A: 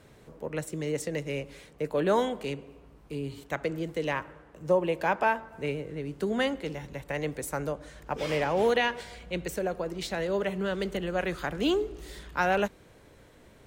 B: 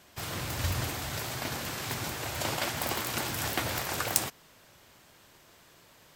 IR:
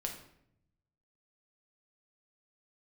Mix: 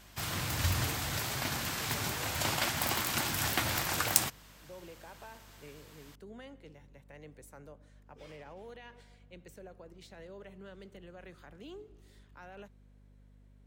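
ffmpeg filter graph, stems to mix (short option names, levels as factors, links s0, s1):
-filter_complex "[0:a]alimiter=limit=0.0794:level=0:latency=1,volume=0.112[s0];[1:a]equalizer=f=470:w=1.3:g=-6,bandreject=f=60:t=h:w=6,bandreject=f=120:t=h:w=6,volume=1.12[s1];[s0][s1]amix=inputs=2:normalize=0,aeval=exprs='val(0)+0.00126*(sin(2*PI*50*n/s)+sin(2*PI*2*50*n/s)/2+sin(2*PI*3*50*n/s)/3+sin(2*PI*4*50*n/s)/4+sin(2*PI*5*50*n/s)/5)':c=same"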